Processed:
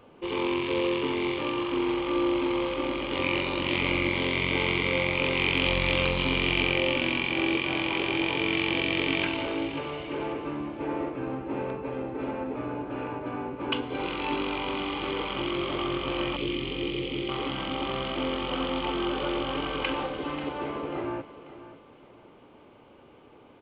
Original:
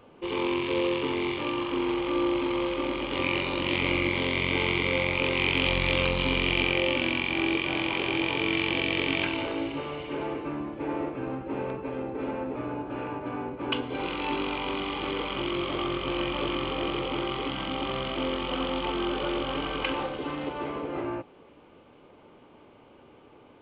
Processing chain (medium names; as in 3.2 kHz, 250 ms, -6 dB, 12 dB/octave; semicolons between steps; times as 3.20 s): 16.36–17.29 s: high-order bell 1 kHz -15 dB; on a send: feedback delay 539 ms, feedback 33%, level -14.5 dB